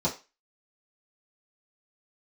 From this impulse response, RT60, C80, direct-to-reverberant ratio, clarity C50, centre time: 0.30 s, 18.5 dB, −8.5 dB, 12.5 dB, 17 ms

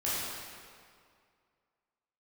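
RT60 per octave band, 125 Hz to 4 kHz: 2.1, 2.1, 2.2, 2.2, 1.9, 1.6 seconds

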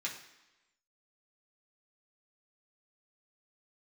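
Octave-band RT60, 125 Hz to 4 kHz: 0.85, 0.95, 1.0, 1.0, 1.1, 1.0 seconds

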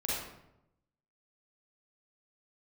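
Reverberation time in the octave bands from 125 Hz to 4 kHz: 1.1, 1.0, 0.90, 0.80, 0.65, 0.55 seconds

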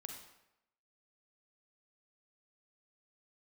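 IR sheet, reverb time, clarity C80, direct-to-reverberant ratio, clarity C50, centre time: 0.85 s, 7.0 dB, 2.5 dB, 4.0 dB, 35 ms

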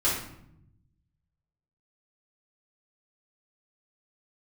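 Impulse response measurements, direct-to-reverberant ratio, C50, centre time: −9.5 dB, 2.5 dB, 45 ms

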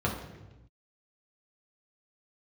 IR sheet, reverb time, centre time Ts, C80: 1.0 s, 36 ms, 8.0 dB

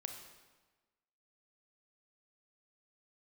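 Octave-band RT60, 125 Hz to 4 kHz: 1.3, 1.3, 1.3, 1.3, 1.2, 1.0 seconds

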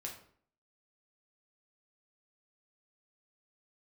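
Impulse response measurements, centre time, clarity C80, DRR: 24 ms, 11.5 dB, −1.0 dB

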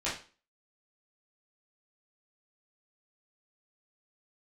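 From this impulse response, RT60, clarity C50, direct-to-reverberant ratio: 0.35 s, 6.0 dB, −10.5 dB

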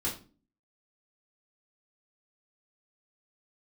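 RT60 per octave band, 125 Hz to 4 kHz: 0.50, 0.60, 0.40, 0.35, 0.30, 0.30 seconds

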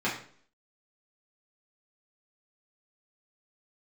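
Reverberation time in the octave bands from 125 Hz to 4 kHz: 0.55, 0.60, 0.55, 0.50, 0.45, 0.45 seconds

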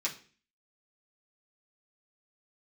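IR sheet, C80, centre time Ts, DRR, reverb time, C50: 17.5 dB, 14 ms, −6.0 dB, 0.40 s, 12.5 dB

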